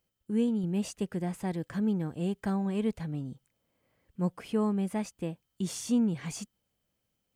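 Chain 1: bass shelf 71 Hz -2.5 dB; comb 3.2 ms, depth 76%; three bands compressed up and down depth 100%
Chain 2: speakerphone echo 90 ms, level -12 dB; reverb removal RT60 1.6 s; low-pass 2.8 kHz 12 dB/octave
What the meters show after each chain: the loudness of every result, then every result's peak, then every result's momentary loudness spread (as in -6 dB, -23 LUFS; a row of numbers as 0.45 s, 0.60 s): -33.0 LUFS, -34.0 LUFS; -18.0 dBFS, -18.5 dBFS; 9 LU, 11 LU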